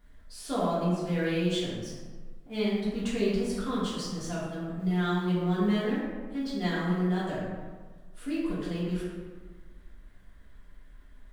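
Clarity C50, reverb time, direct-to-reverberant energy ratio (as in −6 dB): −1.0 dB, 1.5 s, −9.5 dB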